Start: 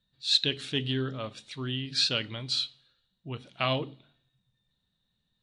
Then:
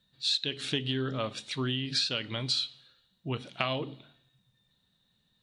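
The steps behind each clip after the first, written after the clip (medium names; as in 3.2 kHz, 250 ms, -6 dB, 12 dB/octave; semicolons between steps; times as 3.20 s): bass shelf 65 Hz -11 dB; compression 8:1, threshold -33 dBFS, peak gain reduction 15 dB; trim +6.5 dB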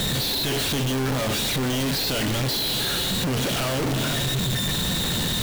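one-bit comparator; in parallel at -7.5 dB: sample-and-hold 35×; on the sum: trim +9 dB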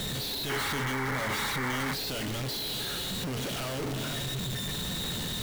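feedback comb 420 Hz, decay 0.37 s, harmonics odd, mix 60%; painted sound noise, 0.49–1.94 s, 770–2300 Hz -33 dBFS; trim -1.5 dB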